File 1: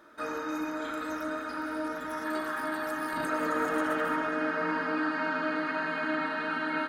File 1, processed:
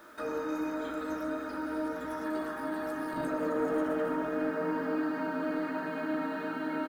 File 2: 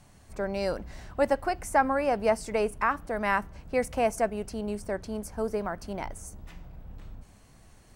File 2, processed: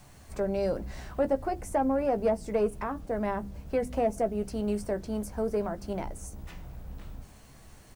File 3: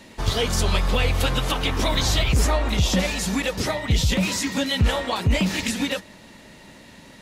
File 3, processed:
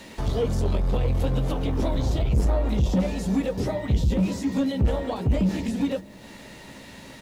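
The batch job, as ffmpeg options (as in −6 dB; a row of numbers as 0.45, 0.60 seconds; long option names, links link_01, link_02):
-filter_complex "[0:a]bandreject=frequency=50:width_type=h:width=6,bandreject=frequency=100:width_type=h:width=6,bandreject=frequency=150:width_type=h:width=6,bandreject=frequency=200:width_type=h:width=6,bandreject=frequency=250:width_type=h:width=6,bandreject=frequency=300:width_type=h:width=6,bandreject=frequency=350:width_type=h:width=6,acrossover=split=670[link_01][link_02];[link_02]acompressor=threshold=-46dB:ratio=4[link_03];[link_01][link_03]amix=inputs=2:normalize=0,acrusher=bits=10:mix=0:aa=0.000001,asoftclip=type=tanh:threshold=-19.5dB,asplit=2[link_04][link_05];[link_05]adelay=15,volume=-10.5dB[link_06];[link_04][link_06]amix=inputs=2:normalize=0,volume=3dB"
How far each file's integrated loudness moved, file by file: −2.0, −1.5, −2.5 LU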